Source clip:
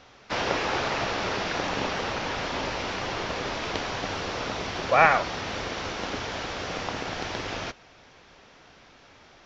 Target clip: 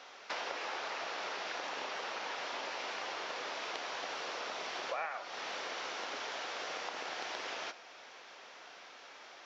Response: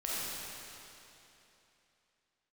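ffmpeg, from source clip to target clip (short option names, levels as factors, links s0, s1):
-filter_complex "[0:a]highpass=520,acompressor=threshold=0.01:ratio=5,asplit=2[s0][s1];[1:a]atrim=start_sample=2205,atrim=end_sample=6174,asetrate=48510,aresample=44100[s2];[s1][s2]afir=irnorm=-1:irlink=0,volume=0.251[s3];[s0][s3]amix=inputs=2:normalize=0"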